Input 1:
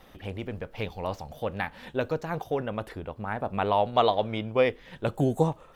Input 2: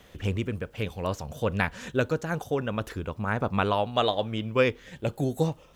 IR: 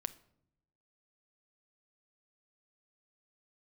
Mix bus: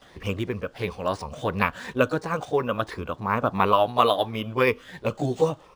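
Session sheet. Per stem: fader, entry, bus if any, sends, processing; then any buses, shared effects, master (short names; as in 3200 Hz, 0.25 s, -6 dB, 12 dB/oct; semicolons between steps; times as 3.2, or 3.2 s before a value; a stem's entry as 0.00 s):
-6.0 dB, 0.00 s, no send, resonant high shelf 3800 Hz +7.5 dB, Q 3
+2.5 dB, 16 ms, no send, moving spectral ripple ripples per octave 0.85, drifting +2.9 Hz, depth 9 dB; bell 1100 Hz +8 dB 0.36 oct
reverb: off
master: low shelf 170 Hz -7 dB; decimation joined by straight lines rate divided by 3×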